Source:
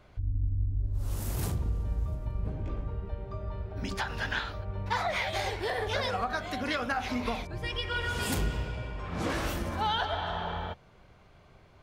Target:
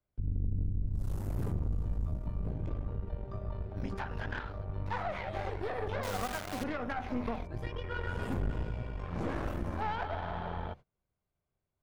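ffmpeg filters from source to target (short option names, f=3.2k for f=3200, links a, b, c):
-filter_complex "[0:a]agate=range=-27dB:threshold=-45dB:ratio=16:detection=peak,tiltshelf=f=680:g=3,acrossover=split=150|730|2000[a][b][c][d];[d]acompressor=threshold=-56dB:ratio=6[e];[a][b][c][e]amix=inputs=4:normalize=0,aeval=exprs='(tanh(25.1*val(0)+0.75)-tanh(0.75))/25.1':c=same,asettb=1/sr,asplit=3[f][g][h];[f]atrim=end=6.034[i];[g]atrim=start=6.03:end=6.64,asetpts=PTS-STARTPTS,afade=t=in:d=0.004:c=qsin,afade=t=out:st=0.606:d=0.004:c=qsin,acrusher=bits=7:dc=4:mix=0:aa=0.000001[j];[h]atrim=start=6.636[k];[i][j]acrossfade=d=0.004:c1=hsin:c2=qsin[l];[l][k]acrossfade=d=0.004:c1=qsin:c2=hsin"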